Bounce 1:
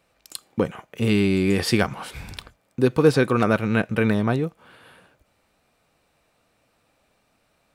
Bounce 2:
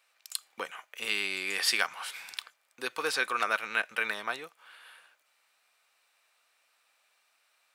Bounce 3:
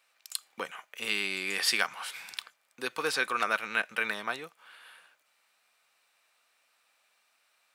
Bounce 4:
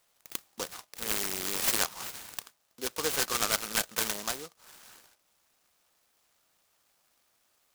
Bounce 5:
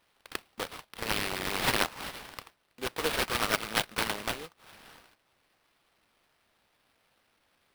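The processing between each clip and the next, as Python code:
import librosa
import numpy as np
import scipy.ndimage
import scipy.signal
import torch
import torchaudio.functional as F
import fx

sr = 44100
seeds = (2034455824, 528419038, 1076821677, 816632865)

y1 = scipy.signal.sosfilt(scipy.signal.butter(2, 1300.0, 'highpass', fs=sr, output='sos'), x)
y2 = fx.peak_eq(y1, sr, hz=170.0, db=6.5, octaves=1.4)
y3 = fx.noise_mod_delay(y2, sr, seeds[0], noise_hz=4900.0, depth_ms=0.15)
y4 = fx.sample_hold(y3, sr, seeds[1], rate_hz=7000.0, jitter_pct=20)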